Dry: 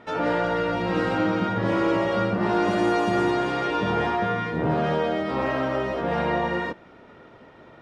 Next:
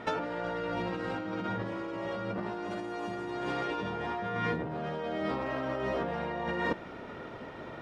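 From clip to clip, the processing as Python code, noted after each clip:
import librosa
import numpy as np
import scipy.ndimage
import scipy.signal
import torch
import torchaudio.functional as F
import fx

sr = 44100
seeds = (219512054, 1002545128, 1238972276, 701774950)

y = fx.over_compress(x, sr, threshold_db=-32.0, ratio=-1.0)
y = y * librosa.db_to_amplitude(-2.5)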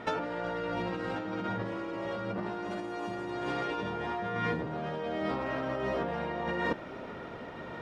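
y = x + 10.0 ** (-16.0 / 20.0) * np.pad(x, (int(1088 * sr / 1000.0), 0))[:len(x)]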